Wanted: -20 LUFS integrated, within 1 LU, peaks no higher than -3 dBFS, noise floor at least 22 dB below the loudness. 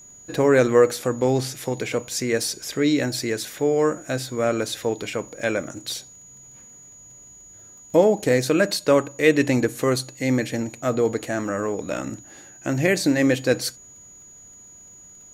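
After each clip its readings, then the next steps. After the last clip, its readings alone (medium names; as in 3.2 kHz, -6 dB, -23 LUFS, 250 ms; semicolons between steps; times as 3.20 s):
tick rate 24 per s; steady tone 6.8 kHz; tone level -44 dBFS; loudness -22.5 LUFS; peak level -4.0 dBFS; loudness target -20.0 LUFS
-> de-click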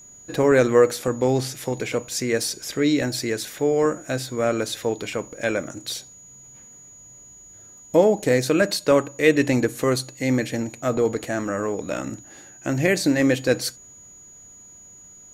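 tick rate 0.065 per s; steady tone 6.8 kHz; tone level -44 dBFS
-> band-stop 6.8 kHz, Q 30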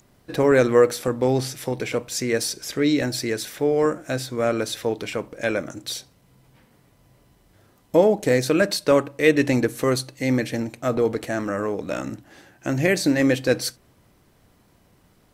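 steady tone not found; loudness -22.5 LUFS; peak level -4.0 dBFS; loudness target -20.0 LUFS
-> trim +2.5 dB; peak limiter -3 dBFS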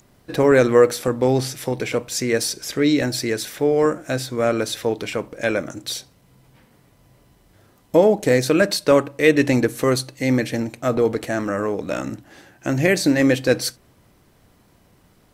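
loudness -20.0 LUFS; peak level -3.0 dBFS; noise floor -57 dBFS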